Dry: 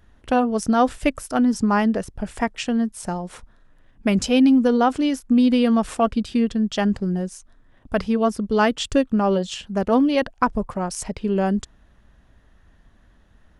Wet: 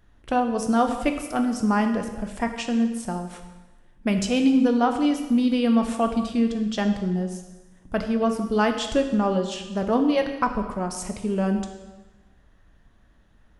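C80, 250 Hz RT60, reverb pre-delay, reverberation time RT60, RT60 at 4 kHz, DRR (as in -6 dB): 9.0 dB, 1.1 s, 4 ms, 1.2 s, 1.1 s, 5.0 dB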